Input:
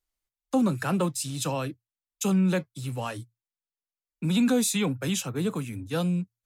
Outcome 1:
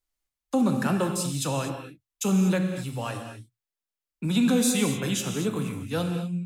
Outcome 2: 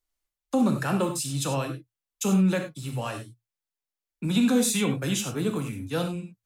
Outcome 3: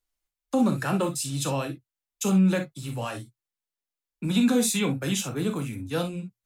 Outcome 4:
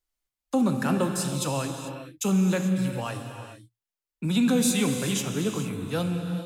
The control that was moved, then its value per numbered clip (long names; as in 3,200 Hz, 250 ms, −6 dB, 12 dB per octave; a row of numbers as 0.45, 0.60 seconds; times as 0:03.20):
reverb whose tail is shaped and stops, gate: 270, 120, 80, 470 milliseconds